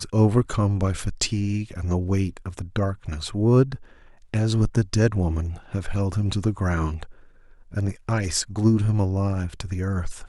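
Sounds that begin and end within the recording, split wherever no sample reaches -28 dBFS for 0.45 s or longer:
4.34–7.03

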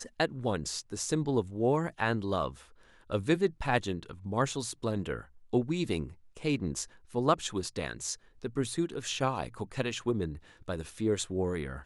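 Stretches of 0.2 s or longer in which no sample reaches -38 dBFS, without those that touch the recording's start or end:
2.51–3.1
5.21–5.53
6.08–6.37
6.84–7.15
8.14–8.44
10.35–10.68

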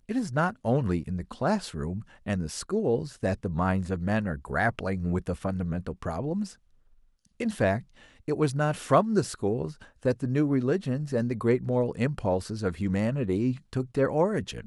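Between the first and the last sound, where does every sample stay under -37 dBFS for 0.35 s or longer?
6.51–7.4
7.8–8.28

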